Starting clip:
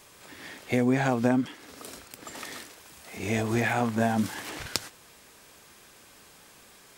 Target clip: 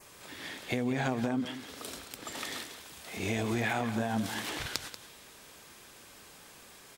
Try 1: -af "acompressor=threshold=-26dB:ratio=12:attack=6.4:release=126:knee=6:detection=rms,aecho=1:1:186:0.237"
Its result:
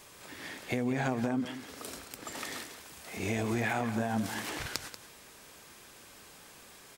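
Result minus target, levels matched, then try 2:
4,000 Hz band −3.0 dB
-af "acompressor=threshold=-26dB:ratio=12:attack=6.4:release=126:knee=6:detection=rms,adynamicequalizer=threshold=0.00112:dfrequency=3500:dqfactor=2.4:tfrequency=3500:tqfactor=2.4:attack=5:release=100:ratio=0.438:range=2.5:mode=boostabove:tftype=bell,aecho=1:1:186:0.237"

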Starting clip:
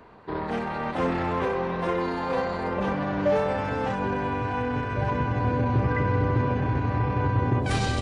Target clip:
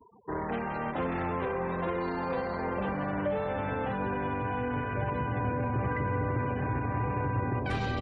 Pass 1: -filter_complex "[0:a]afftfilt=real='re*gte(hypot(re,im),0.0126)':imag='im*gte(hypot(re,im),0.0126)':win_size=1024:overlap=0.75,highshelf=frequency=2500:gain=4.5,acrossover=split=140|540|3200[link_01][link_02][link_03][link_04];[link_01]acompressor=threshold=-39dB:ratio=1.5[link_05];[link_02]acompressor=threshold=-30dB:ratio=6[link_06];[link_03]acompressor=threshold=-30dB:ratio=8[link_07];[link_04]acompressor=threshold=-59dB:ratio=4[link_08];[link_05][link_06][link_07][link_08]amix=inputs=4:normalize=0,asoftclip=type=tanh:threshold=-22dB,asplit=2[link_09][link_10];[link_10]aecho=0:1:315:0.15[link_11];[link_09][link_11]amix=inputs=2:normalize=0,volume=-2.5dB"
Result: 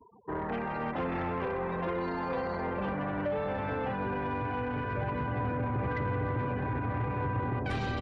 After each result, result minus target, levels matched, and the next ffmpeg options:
soft clipping: distortion +18 dB; echo 181 ms early
-filter_complex "[0:a]afftfilt=real='re*gte(hypot(re,im),0.0126)':imag='im*gte(hypot(re,im),0.0126)':win_size=1024:overlap=0.75,highshelf=frequency=2500:gain=4.5,acrossover=split=140|540|3200[link_01][link_02][link_03][link_04];[link_01]acompressor=threshold=-39dB:ratio=1.5[link_05];[link_02]acompressor=threshold=-30dB:ratio=6[link_06];[link_03]acompressor=threshold=-30dB:ratio=8[link_07];[link_04]acompressor=threshold=-59dB:ratio=4[link_08];[link_05][link_06][link_07][link_08]amix=inputs=4:normalize=0,asoftclip=type=tanh:threshold=-11.5dB,asplit=2[link_09][link_10];[link_10]aecho=0:1:315:0.15[link_11];[link_09][link_11]amix=inputs=2:normalize=0,volume=-2.5dB"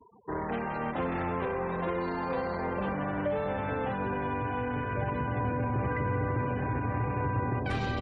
echo 181 ms early
-filter_complex "[0:a]afftfilt=real='re*gte(hypot(re,im),0.0126)':imag='im*gte(hypot(re,im),0.0126)':win_size=1024:overlap=0.75,highshelf=frequency=2500:gain=4.5,acrossover=split=140|540|3200[link_01][link_02][link_03][link_04];[link_01]acompressor=threshold=-39dB:ratio=1.5[link_05];[link_02]acompressor=threshold=-30dB:ratio=6[link_06];[link_03]acompressor=threshold=-30dB:ratio=8[link_07];[link_04]acompressor=threshold=-59dB:ratio=4[link_08];[link_05][link_06][link_07][link_08]amix=inputs=4:normalize=0,asoftclip=type=tanh:threshold=-11.5dB,asplit=2[link_09][link_10];[link_10]aecho=0:1:496:0.15[link_11];[link_09][link_11]amix=inputs=2:normalize=0,volume=-2.5dB"

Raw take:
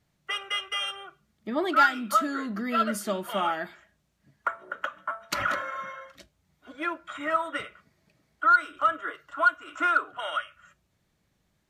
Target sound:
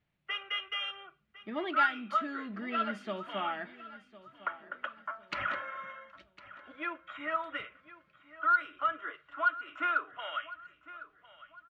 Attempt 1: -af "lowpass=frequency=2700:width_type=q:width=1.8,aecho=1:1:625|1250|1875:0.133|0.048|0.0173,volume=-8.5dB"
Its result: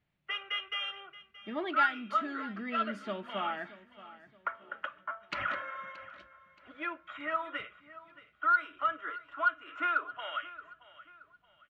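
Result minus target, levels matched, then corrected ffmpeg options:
echo 430 ms early
-af "lowpass=frequency=2700:width_type=q:width=1.8,aecho=1:1:1055|2110|3165:0.133|0.048|0.0173,volume=-8.5dB"

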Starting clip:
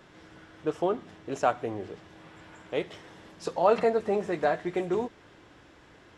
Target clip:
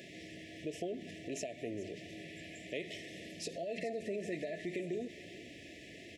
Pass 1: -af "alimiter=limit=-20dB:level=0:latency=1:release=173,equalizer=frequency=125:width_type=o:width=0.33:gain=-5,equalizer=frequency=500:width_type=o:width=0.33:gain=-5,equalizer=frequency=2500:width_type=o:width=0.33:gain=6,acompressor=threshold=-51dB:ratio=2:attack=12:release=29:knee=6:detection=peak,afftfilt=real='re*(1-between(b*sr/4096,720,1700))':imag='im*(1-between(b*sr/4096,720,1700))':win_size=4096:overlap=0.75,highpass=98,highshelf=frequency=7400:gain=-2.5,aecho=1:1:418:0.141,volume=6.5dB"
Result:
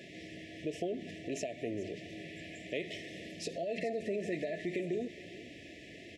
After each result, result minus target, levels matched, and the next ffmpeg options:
8,000 Hz band −3.5 dB; downward compressor: peak gain reduction −3 dB
-af "alimiter=limit=-20dB:level=0:latency=1:release=173,equalizer=frequency=125:width_type=o:width=0.33:gain=-5,equalizer=frequency=500:width_type=o:width=0.33:gain=-5,equalizer=frequency=2500:width_type=o:width=0.33:gain=6,acompressor=threshold=-51dB:ratio=2:attack=12:release=29:knee=6:detection=peak,afftfilt=real='re*(1-between(b*sr/4096,720,1700))':imag='im*(1-between(b*sr/4096,720,1700))':win_size=4096:overlap=0.75,highpass=98,highshelf=frequency=7400:gain=5.5,aecho=1:1:418:0.141,volume=6.5dB"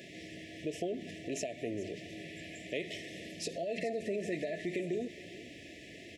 downward compressor: peak gain reduction −3 dB
-af "alimiter=limit=-20dB:level=0:latency=1:release=173,equalizer=frequency=125:width_type=o:width=0.33:gain=-5,equalizer=frequency=500:width_type=o:width=0.33:gain=-5,equalizer=frequency=2500:width_type=o:width=0.33:gain=6,acompressor=threshold=-57.5dB:ratio=2:attack=12:release=29:knee=6:detection=peak,afftfilt=real='re*(1-between(b*sr/4096,720,1700))':imag='im*(1-between(b*sr/4096,720,1700))':win_size=4096:overlap=0.75,highpass=98,highshelf=frequency=7400:gain=5.5,aecho=1:1:418:0.141,volume=6.5dB"

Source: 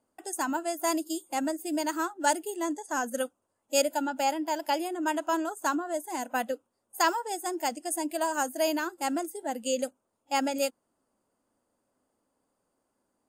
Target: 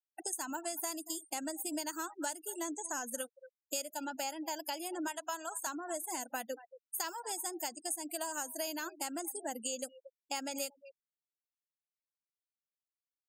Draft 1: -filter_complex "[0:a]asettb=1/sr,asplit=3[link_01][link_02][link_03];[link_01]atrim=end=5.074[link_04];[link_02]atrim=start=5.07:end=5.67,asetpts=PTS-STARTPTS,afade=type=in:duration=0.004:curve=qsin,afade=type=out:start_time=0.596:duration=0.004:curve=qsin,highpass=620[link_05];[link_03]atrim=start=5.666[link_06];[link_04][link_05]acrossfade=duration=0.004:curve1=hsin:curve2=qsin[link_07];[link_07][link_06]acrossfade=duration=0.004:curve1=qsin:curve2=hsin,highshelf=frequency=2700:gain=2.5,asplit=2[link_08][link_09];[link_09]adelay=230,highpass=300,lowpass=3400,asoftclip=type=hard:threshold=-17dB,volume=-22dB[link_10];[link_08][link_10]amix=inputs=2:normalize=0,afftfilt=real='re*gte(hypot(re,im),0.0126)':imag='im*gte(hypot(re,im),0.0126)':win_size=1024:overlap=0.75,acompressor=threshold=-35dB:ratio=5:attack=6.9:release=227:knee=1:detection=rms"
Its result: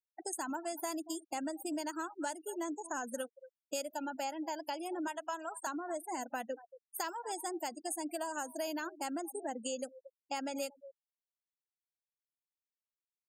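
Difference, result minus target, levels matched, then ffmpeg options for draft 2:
4,000 Hz band −3.0 dB
-filter_complex "[0:a]asettb=1/sr,asplit=3[link_01][link_02][link_03];[link_01]atrim=end=5.074[link_04];[link_02]atrim=start=5.07:end=5.67,asetpts=PTS-STARTPTS,afade=type=in:duration=0.004:curve=qsin,afade=type=out:start_time=0.596:duration=0.004:curve=qsin,highpass=620[link_05];[link_03]atrim=start=5.666[link_06];[link_04][link_05]acrossfade=duration=0.004:curve1=hsin:curve2=qsin[link_07];[link_07][link_06]acrossfade=duration=0.004:curve1=qsin:curve2=hsin,highshelf=frequency=2700:gain=12.5,asplit=2[link_08][link_09];[link_09]adelay=230,highpass=300,lowpass=3400,asoftclip=type=hard:threshold=-17dB,volume=-22dB[link_10];[link_08][link_10]amix=inputs=2:normalize=0,afftfilt=real='re*gte(hypot(re,im),0.0126)':imag='im*gte(hypot(re,im),0.0126)':win_size=1024:overlap=0.75,acompressor=threshold=-35dB:ratio=5:attack=6.9:release=227:knee=1:detection=rms"

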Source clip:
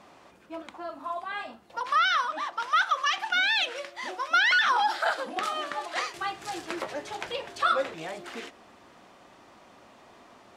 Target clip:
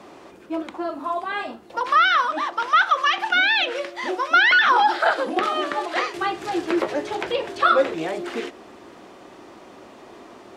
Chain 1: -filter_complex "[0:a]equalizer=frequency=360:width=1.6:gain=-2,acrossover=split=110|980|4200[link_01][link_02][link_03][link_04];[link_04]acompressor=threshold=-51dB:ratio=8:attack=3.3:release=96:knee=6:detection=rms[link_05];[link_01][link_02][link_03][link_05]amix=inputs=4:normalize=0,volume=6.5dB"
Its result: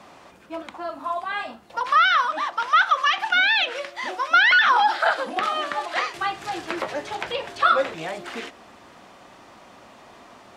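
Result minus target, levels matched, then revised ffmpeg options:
500 Hz band −4.0 dB
-filter_complex "[0:a]equalizer=frequency=360:width=1.6:gain=9.5,acrossover=split=110|980|4200[link_01][link_02][link_03][link_04];[link_04]acompressor=threshold=-51dB:ratio=8:attack=3.3:release=96:knee=6:detection=rms[link_05];[link_01][link_02][link_03][link_05]amix=inputs=4:normalize=0,volume=6.5dB"

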